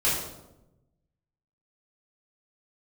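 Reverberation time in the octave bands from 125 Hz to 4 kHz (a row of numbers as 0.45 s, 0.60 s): 1.6 s, 1.2 s, 1.1 s, 0.85 s, 0.60 s, 0.60 s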